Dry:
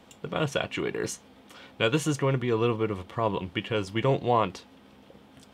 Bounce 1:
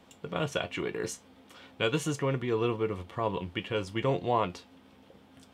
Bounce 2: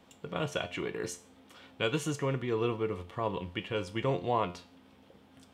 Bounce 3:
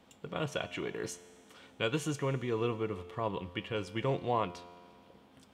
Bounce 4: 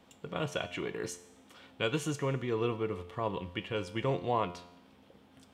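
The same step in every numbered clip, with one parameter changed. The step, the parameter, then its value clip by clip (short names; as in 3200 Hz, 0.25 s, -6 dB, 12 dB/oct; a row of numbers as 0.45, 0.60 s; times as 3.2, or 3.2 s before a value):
resonator, decay: 0.15, 0.41, 2.2, 0.87 s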